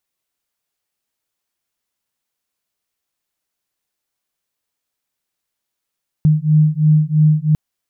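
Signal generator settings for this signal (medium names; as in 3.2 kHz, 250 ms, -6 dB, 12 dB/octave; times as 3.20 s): beating tones 152 Hz, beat 3 Hz, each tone -13 dBFS 1.30 s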